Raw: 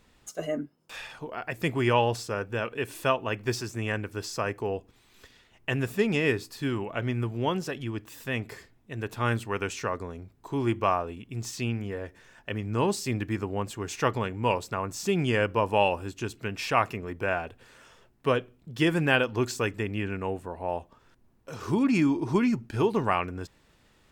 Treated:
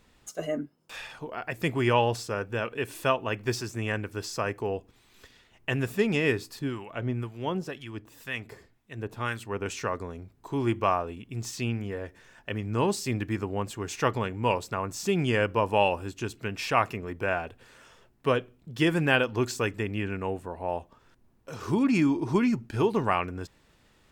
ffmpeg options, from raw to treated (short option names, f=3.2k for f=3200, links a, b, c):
-filter_complex "[0:a]asettb=1/sr,asplit=3[a][b][c];[a]atrim=end=6.594[d];[b]atrim=start=6.59:end=9.66,asetpts=PTS-STARTPTS,afade=t=in:d=0.004:c=qsin,afade=t=out:st=3.066:d=0.004:c=qsin,acrossover=split=1000[e][f];[e]aeval=exprs='val(0)*(1-0.7/2+0.7/2*cos(2*PI*2*n/s))':c=same[g];[f]aeval=exprs='val(0)*(1-0.7/2-0.7/2*cos(2*PI*2*n/s))':c=same[h];[g][h]amix=inputs=2:normalize=0[i];[c]atrim=start=9.656[j];[d][i]acrossfade=d=0.004:c1=hsin:c2=qsin[k];[k][j]acrossfade=d=0.004:c1=qsin:c2=hsin"